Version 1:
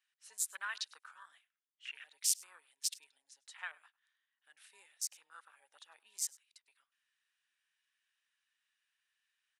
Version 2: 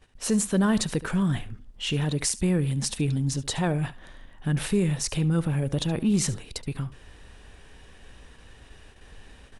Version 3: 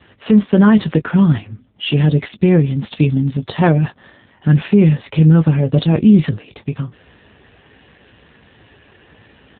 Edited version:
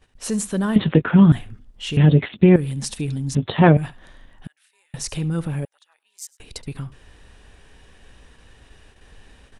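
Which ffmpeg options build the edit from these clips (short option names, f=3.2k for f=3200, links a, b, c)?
-filter_complex "[2:a]asplit=3[a][b][c];[0:a]asplit=2[d][e];[1:a]asplit=6[f][g][h][i][j][k];[f]atrim=end=0.762[l];[a]atrim=start=0.758:end=1.322[m];[g]atrim=start=1.318:end=1.972[n];[b]atrim=start=1.968:end=2.562[o];[h]atrim=start=2.558:end=3.352[p];[c]atrim=start=3.348:end=3.772[q];[i]atrim=start=3.768:end=4.472[r];[d]atrim=start=4.468:end=4.942[s];[j]atrim=start=4.938:end=5.652[t];[e]atrim=start=5.648:end=6.402[u];[k]atrim=start=6.398[v];[l][m]acrossfade=d=0.004:c1=hsin:c2=hsin[w];[w][n]acrossfade=d=0.004:c1=hsin:c2=hsin[x];[x][o]acrossfade=d=0.004:c1=hsin:c2=hsin[y];[y][p]acrossfade=d=0.004:c1=hsin:c2=hsin[z];[z][q]acrossfade=d=0.004:c1=hsin:c2=hsin[aa];[aa][r]acrossfade=d=0.004:c1=hsin:c2=hsin[ab];[ab][s]acrossfade=d=0.004:c1=hsin:c2=hsin[ac];[ac][t]acrossfade=d=0.004:c1=hsin:c2=hsin[ad];[ad][u]acrossfade=d=0.004:c1=hsin:c2=hsin[ae];[ae][v]acrossfade=d=0.004:c1=hsin:c2=hsin"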